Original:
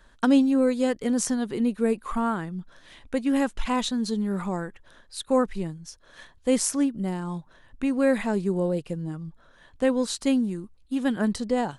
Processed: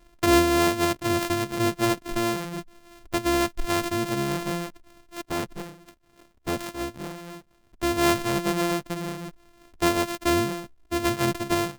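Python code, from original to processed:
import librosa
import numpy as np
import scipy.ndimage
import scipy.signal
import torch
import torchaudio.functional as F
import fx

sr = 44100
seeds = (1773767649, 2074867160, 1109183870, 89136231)

y = np.r_[np.sort(x[:len(x) // 128 * 128].reshape(-1, 128), axis=1).ravel(), x[len(x) // 128 * 128:]]
y = fx.hpss(y, sr, part='harmonic', gain_db=-9, at=(5.24, 7.84))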